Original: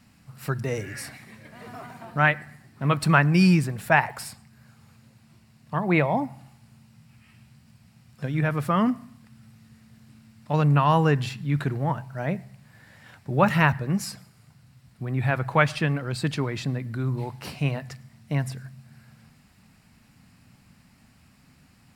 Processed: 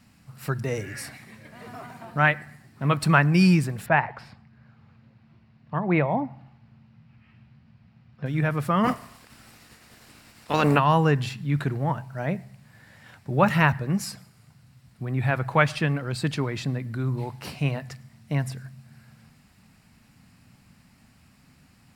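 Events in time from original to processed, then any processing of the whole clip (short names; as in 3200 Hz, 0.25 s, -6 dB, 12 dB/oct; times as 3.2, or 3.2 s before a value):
3.86–8.26 air absorption 290 m
8.83–10.78 spectral limiter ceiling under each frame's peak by 21 dB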